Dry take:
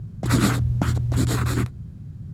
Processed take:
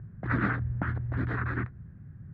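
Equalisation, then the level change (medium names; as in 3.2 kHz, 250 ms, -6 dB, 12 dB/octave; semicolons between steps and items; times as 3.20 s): four-pole ladder low-pass 1.9 kHz, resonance 65%; +1.5 dB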